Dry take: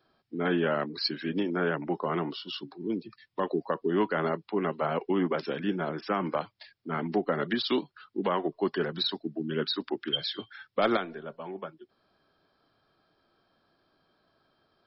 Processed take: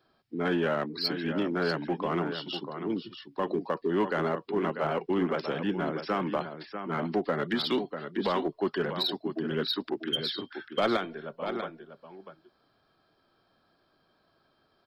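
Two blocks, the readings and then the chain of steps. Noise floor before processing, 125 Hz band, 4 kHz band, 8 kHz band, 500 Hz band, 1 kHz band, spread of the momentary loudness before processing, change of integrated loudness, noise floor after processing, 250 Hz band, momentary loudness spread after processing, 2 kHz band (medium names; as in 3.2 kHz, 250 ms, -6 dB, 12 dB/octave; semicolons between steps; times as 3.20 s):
-73 dBFS, +0.5 dB, 0.0 dB, no reading, 0.0 dB, 0.0 dB, 12 LU, 0.0 dB, -70 dBFS, 0.0 dB, 9 LU, 0.0 dB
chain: delay 643 ms -9.5 dB; in parallel at -6 dB: hard clipper -27 dBFS, distortion -9 dB; on the sum: trim -3 dB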